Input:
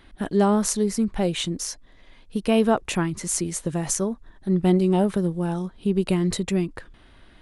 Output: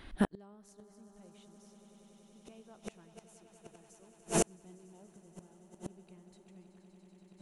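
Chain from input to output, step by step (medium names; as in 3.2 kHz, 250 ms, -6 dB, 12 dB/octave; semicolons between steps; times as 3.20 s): echo with a slow build-up 95 ms, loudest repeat 8, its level -11 dB; inverted gate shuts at -15 dBFS, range -37 dB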